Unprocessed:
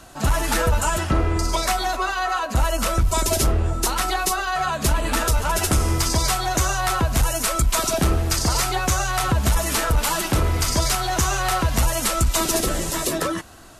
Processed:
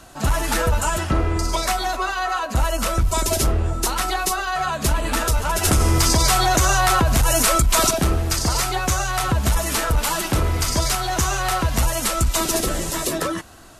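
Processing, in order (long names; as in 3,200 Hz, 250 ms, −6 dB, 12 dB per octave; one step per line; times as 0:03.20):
0:05.65–0:07.91: envelope flattener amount 70%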